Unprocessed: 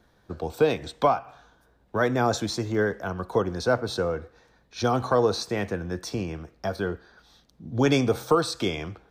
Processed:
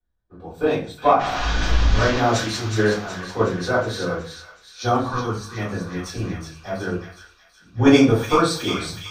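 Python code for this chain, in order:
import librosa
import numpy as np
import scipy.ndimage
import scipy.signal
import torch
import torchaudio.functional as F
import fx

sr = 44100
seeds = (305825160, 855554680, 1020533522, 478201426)

p1 = fx.delta_mod(x, sr, bps=32000, step_db=-21.0, at=(1.19, 2.18))
p2 = fx.rider(p1, sr, range_db=3, speed_s=2.0)
p3 = p1 + (p2 * librosa.db_to_amplitude(-1.0))
p4 = fx.fixed_phaser(p3, sr, hz=1500.0, stages=4, at=(5.1, 5.57))
p5 = p4 + fx.echo_wet_highpass(p4, sr, ms=370, feedback_pct=69, hz=1600.0, wet_db=-4.0, dry=0)
p6 = fx.room_shoebox(p5, sr, seeds[0], volume_m3=31.0, walls='mixed', distance_m=2.4)
p7 = fx.band_widen(p6, sr, depth_pct=70)
y = p7 * librosa.db_to_amplitude(-15.5)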